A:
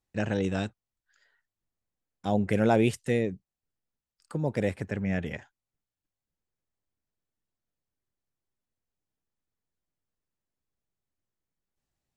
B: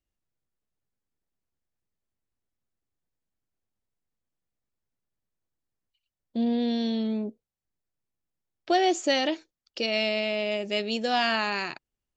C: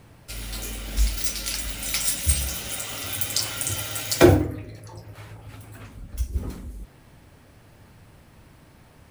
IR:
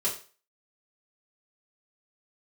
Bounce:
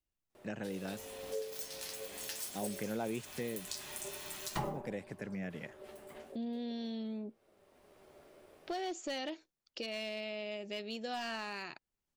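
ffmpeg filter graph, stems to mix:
-filter_complex "[0:a]highpass=f=130:w=0.5412,highpass=f=130:w=1.3066,adelay=300,volume=-3dB[a];[1:a]asoftclip=type=hard:threshold=-19dB,volume=-5dB,asplit=2[b][c];[2:a]aeval=exprs='val(0)*sin(2*PI*490*n/s)':c=same,flanger=delay=8.3:depth=5.4:regen=62:speed=0.44:shape=sinusoidal,adelay=350,volume=-2.5dB[d];[c]apad=whole_len=416937[e];[d][e]sidechaincompress=threshold=-45dB:ratio=12:attack=16:release=814[f];[a][b][f]amix=inputs=3:normalize=0,acompressor=threshold=-44dB:ratio=2"

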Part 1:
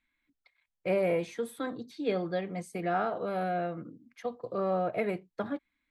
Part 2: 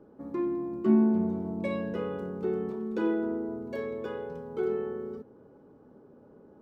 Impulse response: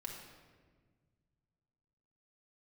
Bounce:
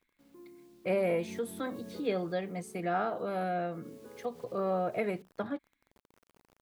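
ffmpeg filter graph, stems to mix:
-filter_complex "[0:a]volume=-1.5dB,asplit=2[a][b];[1:a]highshelf=f=2.1k:g=-11.5,acrusher=bits=7:mix=0:aa=0.000001,volume=-4dB,afade=t=in:st=0.86:d=0.41:silence=0.266073,afade=t=out:st=2.24:d=0.25:silence=0.446684,afade=t=in:st=3.79:d=0.69:silence=0.446684[c];[b]apad=whole_len=291502[d];[c][d]sidechaincompress=threshold=-40dB:ratio=8:attack=7.2:release=127[e];[a][e]amix=inputs=2:normalize=0,highshelf=f=9.5k:g=6.5"

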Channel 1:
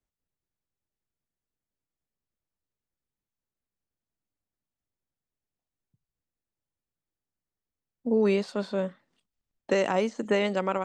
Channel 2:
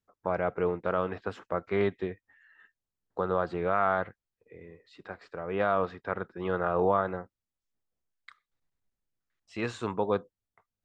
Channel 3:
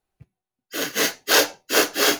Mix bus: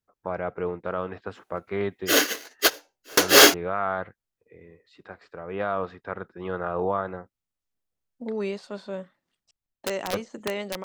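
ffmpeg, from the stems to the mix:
-filter_complex "[0:a]equalizer=f=230:w=2.1:g=-3.5,bandreject=f=460:w=12,aeval=exprs='(mod(5.62*val(0)+1,2)-1)/5.62':c=same,adelay=150,volume=-4.5dB[a];[1:a]volume=-1dB,asplit=3[b][c][d];[b]atrim=end=9.51,asetpts=PTS-STARTPTS,afade=t=out:st=9.506:d=0.004:c=hsin[e];[c]atrim=start=9.51:end=10.13,asetpts=PTS-STARTPTS,volume=0[f];[d]atrim=start=10.13,asetpts=PTS-STARTPTS,afade=t=in:d=0.004:c=hsin[g];[e][f][g]concat=n=3:v=0:a=1,asplit=2[h][i];[2:a]highpass=f=250:w=0.5412,highpass=f=250:w=1.3066,aeval=exprs='0.75*sin(PI/2*1.78*val(0)/0.75)':c=same,adelay=1350,volume=-1.5dB[j];[i]apad=whole_len=156179[k];[j][k]sidechaingate=range=-32dB:threshold=-58dB:ratio=16:detection=peak[l];[a][h][l]amix=inputs=3:normalize=0"

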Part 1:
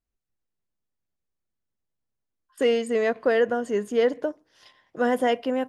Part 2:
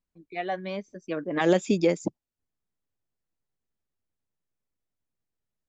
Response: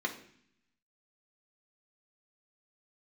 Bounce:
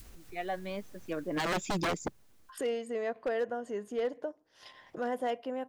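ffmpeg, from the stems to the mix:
-filter_complex "[0:a]adynamicequalizer=threshold=0.02:dfrequency=730:dqfactor=1.1:tfrequency=730:tqfactor=1.1:attack=5:release=100:ratio=0.375:range=2.5:mode=boostabove:tftype=bell,acompressor=mode=upward:threshold=-20dB:ratio=2.5,volume=-3dB,afade=t=out:st=1.07:d=0.74:silence=0.298538,asplit=2[a][b];[1:a]volume=-1.5dB[c];[b]apad=whole_len=250820[d];[c][d]sidechaincompress=threshold=-50dB:ratio=8:attack=16:release=590[e];[a][e]amix=inputs=2:normalize=0,aeval=exprs='0.0562*(abs(mod(val(0)/0.0562+3,4)-2)-1)':c=same"

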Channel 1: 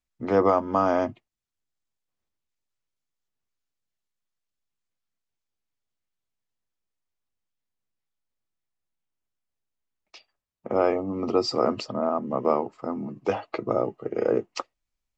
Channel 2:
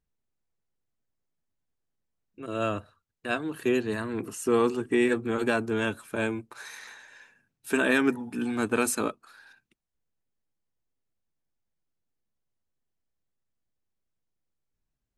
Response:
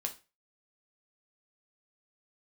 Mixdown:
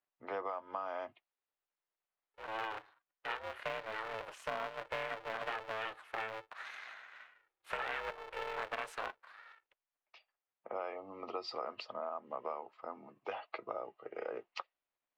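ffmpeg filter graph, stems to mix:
-filter_complex "[0:a]adynamicequalizer=threshold=0.00447:dfrequency=3800:dqfactor=0.97:tfrequency=3800:tqfactor=0.97:attack=5:release=100:ratio=0.375:range=4:mode=boostabove:tftype=bell,volume=-7.5dB[a];[1:a]highpass=44,bandreject=f=420:w=12,aeval=exprs='val(0)*sgn(sin(2*PI*220*n/s))':c=same,volume=-2dB[b];[a][b]amix=inputs=2:normalize=0,acrossover=split=530 3500:gain=0.0891 1 0.0708[c][d][e];[c][d][e]amix=inputs=3:normalize=0,acompressor=threshold=-36dB:ratio=6"

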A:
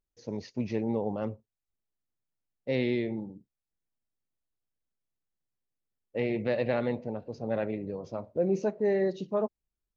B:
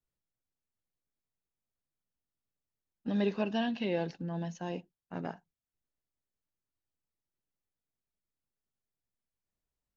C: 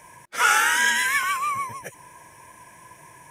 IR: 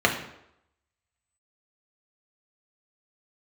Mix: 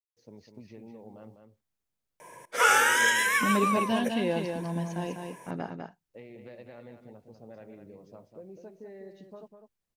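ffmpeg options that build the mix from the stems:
-filter_complex "[0:a]acompressor=threshold=-31dB:ratio=6,acrusher=bits=10:mix=0:aa=0.000001,volume=-12.5dB,asplit=2[a][b];[b]volume=-7.5dB[c];[1:a]adelay=350,volume=3dB,asplit=2[d][e];[e]volume=-5dB[f];[2:a]highpass=140,equalizer=f=490:t=o:w=0.8:g=12.5,adelay=2200,volume=-3.5dB,asplit=2[g][h];[h]volume=-22dB[i];[c][f][i]amix=inputs=3:normalize=0,aecho=0:1:200:1[j];[a][d][g][j]amix=inputs=4:normalize=0"

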